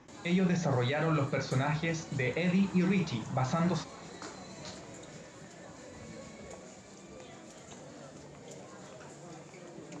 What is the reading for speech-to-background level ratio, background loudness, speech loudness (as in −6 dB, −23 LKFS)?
17.0 dB, −48.0 LKFS, −31.0 LKFS